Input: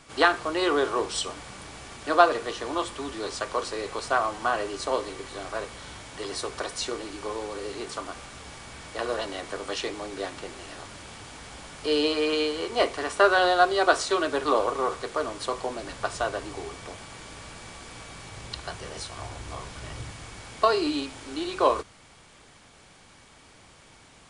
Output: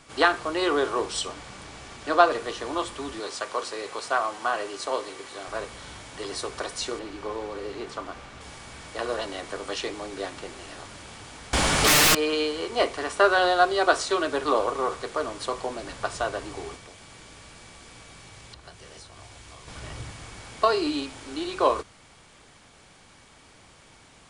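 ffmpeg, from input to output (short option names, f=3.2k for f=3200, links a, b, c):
-filter_complex "[0:a]asettb=1/sr,asplit=3[a][b][c];[a]atrim=end=1.274[d];[b]atrim=start=1.27:end=2.3,asetpts=PTS-STARTPTS,afade=t=in:d=0.004:c=qsin,afade=t=out:st=1.026:d=0.004:c=qsin,lowpass=8.7k[e];[c]atrim=start=2.296[f];[d][e]acrossfade=d=0.004:c1=hsin:c2=qsin[g];[g][f]acrossfade=d=0.004:c1=qsin:c2=hsin,asettb=1/sr,asplit=3[h][i][j];[h]atrim=end=3.204[k];[i]atrim=start=3.2:end=5.48,asetpts=PTS-STARTPTS,afade=t=in:d=0.004:c=qsin,afade=t=out:st=2.276:d=0.004:c=qsin,highpass=f=360:p=1[l];[j]atrim=start=5.476[m];[k][l]acrossfade=d=0.004:c1=hsin:c2=qsin[n];[n][m]acrossfade=d=0.004:c1=qsin:c2=hsin,asettb=1/sr,asplit=3[o][p][q];[o]atrim=end=6.994[r];[p]atrim=start=6.99:end=8.41,asetpts=PTS-STARTPTS,afade=t=in:d=0.004:c=qsin,afade=t=out:st=1.416:d=0.004:c=qsin,aemphasis=mode=reproduction:type=50fm[s];[q]atrim=start=8.406[t];[r][s]acrossfade=d=0.004:c1=hsin:c2=qsin[u];[u][t]acrossfade=d=0.004:c1=qsin:c2=hsin,asettb=1/sr,asplit=3[v][w][x];[v]atrim=end=11.534[y];[w]atrim=start=11.53:end=12.15,asetpts=PTS-STARTPTS,afade=t=in:d=0.004:c=qsin,afade=t=out:st=0.616:d=0.004:c=qsin,aeval=exprs='0.188*sin(PI/2*7.94*val(0)/0.188)':c=same[z];[x]atrim=start=12.146[aa];[y][z]acrossfade=d=0.004:c1=hsin:c2=qsin[ab];[ab][aa]acrossfade=d=0.004:c1=qsin:c2=hsin,asettb=1/sr,asplit=3[ac][ad][ae];[ac]atrim=end=16.754[af];[ad]atrim=start=16.75:end=19.68,asetpts=PTS-STARTPTS,afade=t=in:d=0.004:c=qsin,afade=t=out:st=2.926:d=0.004:c=qsin,acrossover=split=620|1700[ag][ah][ai];[ag]acompressor=threshold=-49dB:ratio=4[aj];[ah]acompressor=threshold=-56dB:ratio=4[ak];[ai]acompressor=threshold=-48dB:ratio=4[al];[aj][ak][al]amix=inputs=3:normalize=0[am];[ae]atrim=start=19.676[an];[af][am]acrossfade=d=0.004:c1=hsin:c2=qsin[ao];[ao][an]acrossfade=d=0.004:c1=qsin:c2=hsin"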